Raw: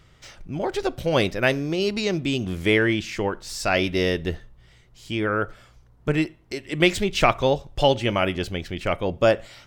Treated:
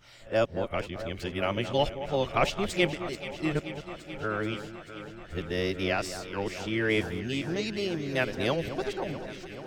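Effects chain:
played backwards from end to start
delay that swaps between a low-pass and a high-pass 217 ms, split 1,800 Hz, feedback 86%, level −11 dB
level −7.5 dB

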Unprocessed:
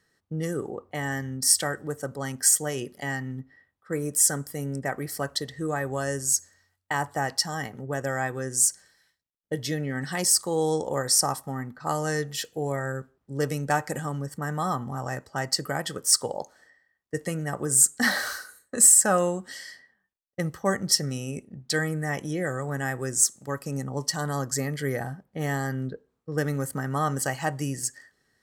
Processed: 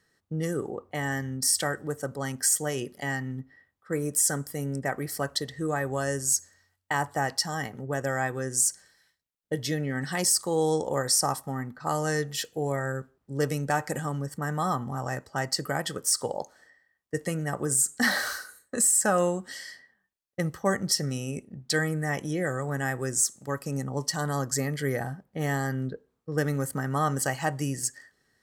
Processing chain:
brickwall limiter −13 dBFS, peak gain reduction 9 dB

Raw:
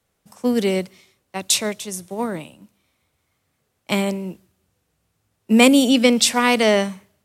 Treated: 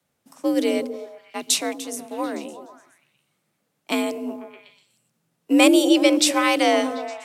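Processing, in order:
frequency shifter +60 Hz
echo through a band-pass that steps 123 ms, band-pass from 290 Hz, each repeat 0.7 octaves, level −7 dB
level −2.5 dB

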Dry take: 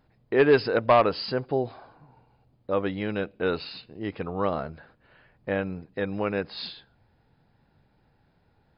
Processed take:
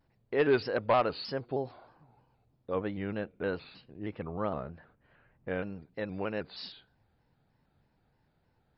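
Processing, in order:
0:02.75–0:05.49: bass and treble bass +3 dB, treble −15 dB
pitch modulation by a square or saw wave square 3.2 Hz, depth 100 cents
level −7 dB

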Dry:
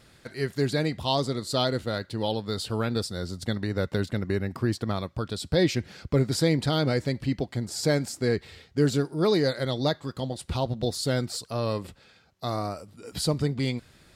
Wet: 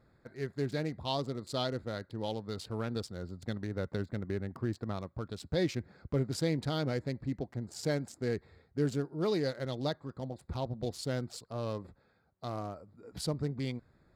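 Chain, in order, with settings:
adaptive Wiener filter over 15 samples
level −8 dB

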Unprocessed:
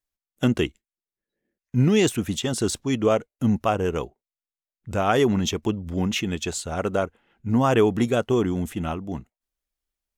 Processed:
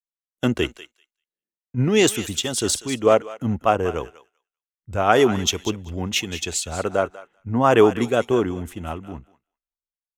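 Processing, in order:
dynamic equaliser 160 Hz, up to −7 dB, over −34 dBFS, Q 0.89
on a send: feedback echo with a high-pass in the loop 195 ms, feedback 22%, high-pass 1,200 Hz, level −9 dB
on the sum: multiband upward and downward expander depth 70%
level +3 dB

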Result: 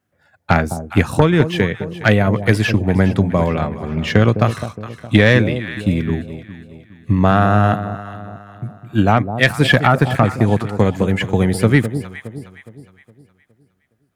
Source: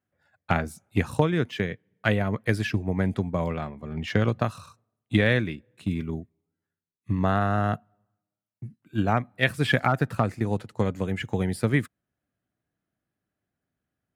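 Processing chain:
delay that swaps between a low-pass and a high-pass 207 ms, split 860 Hz, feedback 62%, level −10.5 dB
sine wavefolder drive 4 dB, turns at −4.5 dBFS
level +3 dB

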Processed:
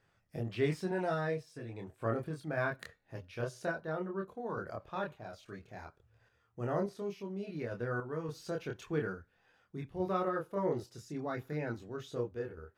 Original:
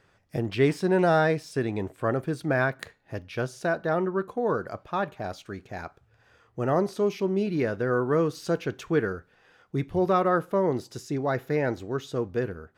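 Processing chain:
multi-voice chorus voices 4, 0.25 Hz, delay 26 ms, depth 1.2 ms
0:00.91–0:01.74: notch comb filter 200 Hz
sample-and-hold tremolo 3.5 Hz
level −5 dB

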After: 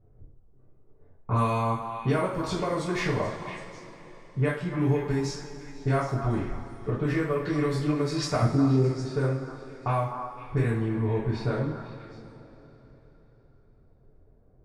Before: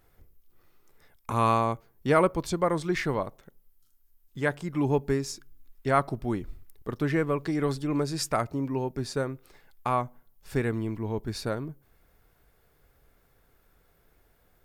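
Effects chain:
low-pass that shuts in the quiet parts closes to 430 Hz, open at −22.5 dBFS
0:08.42–0:08.93: low shelf with overshoot 600 Hz +14 dB, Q 1.5
downward compressor, threshold −31 dBFS, peak gain reduction 19 dB
on a send: echo through a band-pass that steps 254 ms, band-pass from 1,000 Hz, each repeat 1.4 octaves, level −6 dB
on the sum: coupled-rooms reverb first 0.44 s, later 3.9 s, from −18 dB, DRR −7 dB

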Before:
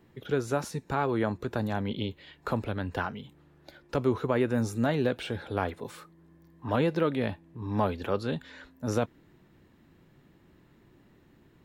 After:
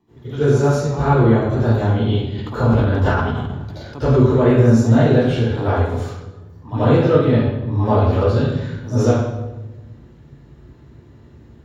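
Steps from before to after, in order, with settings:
0:07.20–0:07.72: low-pass filter 10,000 Hz 12 dB per octave
convolution reverb RT60 1.1 s, pre-delay 71 ms, DRR −17 dB
0:02.35–0:04.24: level that may fall only so fast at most 24 dB per second
level −10.5 dB

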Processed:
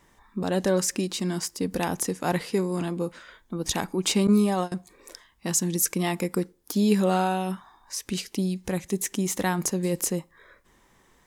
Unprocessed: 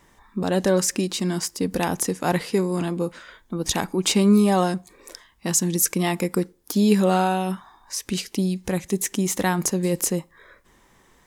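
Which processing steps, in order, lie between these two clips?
0:04.27–0:04.72: noise gate −17 dBFS, range −22 dB
level −3.5 dB

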